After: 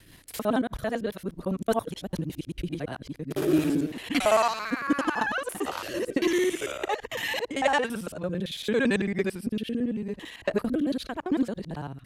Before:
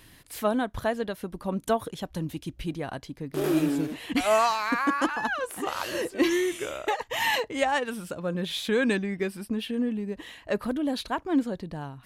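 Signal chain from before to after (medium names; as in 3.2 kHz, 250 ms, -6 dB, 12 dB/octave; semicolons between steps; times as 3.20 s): time reversed locally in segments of 56 ms; rotary cabinet horn 5 Hz, later 0.8 Hz, at 3.18 s; trim +2.5 dB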